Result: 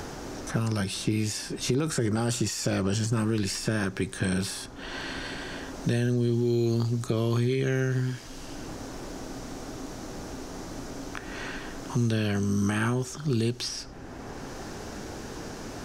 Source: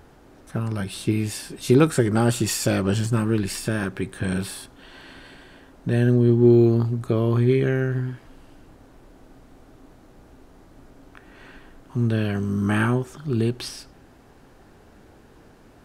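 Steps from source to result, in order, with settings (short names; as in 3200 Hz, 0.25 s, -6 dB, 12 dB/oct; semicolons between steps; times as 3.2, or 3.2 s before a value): bell 5900 Hz +13 dB 0.89 oct; limiter -14 dBFS, peak gain reduction 10 dB; three-band squash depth 70%; gain -3 dB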